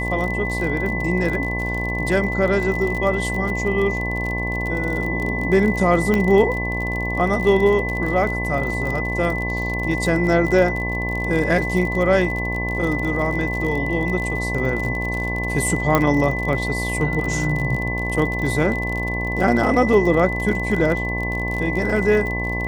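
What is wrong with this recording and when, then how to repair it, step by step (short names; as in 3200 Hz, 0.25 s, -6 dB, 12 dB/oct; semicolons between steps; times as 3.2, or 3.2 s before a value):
buzz 60 Hz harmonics 18 -26 dBFS
crackle 46/s -25 dBFS
tone 2000 Hz -25 dBFS
6.14 pop -8 dBFS
15.95 pop -3 dBFS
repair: de-click; de-hum 60 Hz, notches 18; notch 2000 Hz, Q 30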